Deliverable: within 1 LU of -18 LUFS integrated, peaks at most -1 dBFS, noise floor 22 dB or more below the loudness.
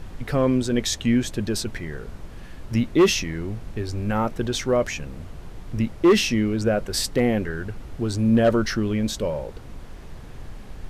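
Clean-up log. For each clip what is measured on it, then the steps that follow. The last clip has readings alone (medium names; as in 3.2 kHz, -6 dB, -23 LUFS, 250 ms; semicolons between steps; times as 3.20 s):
clipped samples 0.5%; clipping level -11.0 dBFS; noise floor -40 dBFS; noise floor target -45 dBFS; loudness -23.0 LUFS; peak level -11.0 dBFS; loudness target -18.0 LUFS
-> clip repair -11 dBFS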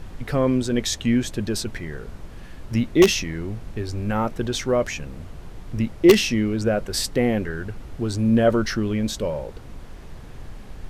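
clipped samples 0.0%; noise floor -40 dBFS; noise floor target -45 dBFS
-> noise print and reduce 6 dB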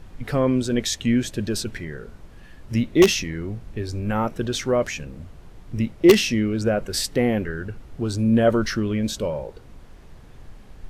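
noise floor -45 dBFS; loudness -22.5 LUFS; peak level -2.0 dBFS; loudness target -18.0 LUFS
-> trim +4.5 dB; peak limiter -1 dBFS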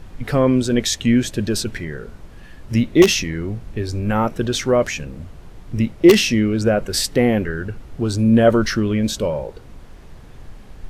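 loudness -18.5 LUFS; peak level -1.0 dBFS; noise floor -41 dBFS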